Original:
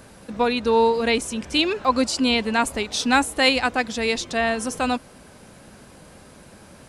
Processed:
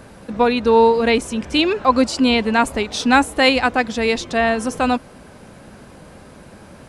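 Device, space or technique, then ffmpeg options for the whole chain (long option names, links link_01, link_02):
behind a face mask: -af "highshelf=frequency=3300:gain=-8,volume=5.5dB"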